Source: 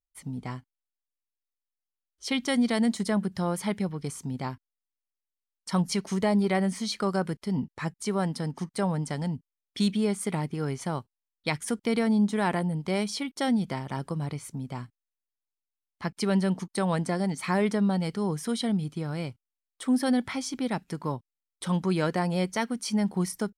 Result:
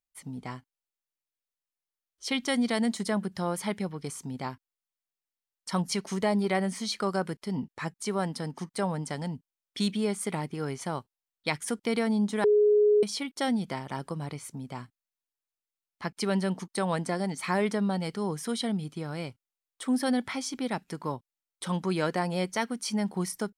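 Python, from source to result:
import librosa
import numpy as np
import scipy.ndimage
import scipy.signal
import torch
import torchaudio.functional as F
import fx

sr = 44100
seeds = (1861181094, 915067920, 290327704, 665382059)

y = fx.edit(x, sr, fx.bleep(start_s=12.44, length_s=0.59, hz=418.0, db=-16.5), tone=tone)
y = fx.low_shelf(y, sr, hz=170.0, db=-8.5)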